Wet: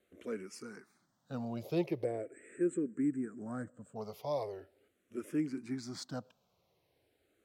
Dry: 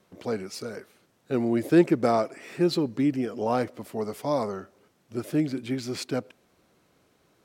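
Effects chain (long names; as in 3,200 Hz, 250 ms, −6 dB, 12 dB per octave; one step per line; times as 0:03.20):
0:02.04–0:03.96: drawn EQ curve 490 Hz 0 dB, 860 Hz −18 dB, 1,600 Hz +1 dB, 3,900 Hz −23 dB, 5,500 Hz −27 dB, 8,100 Hz +11 dB, 11,000 Hz −26 dB
frequency shifter mixed with the dry sound −0.41 Hz
level −8 dB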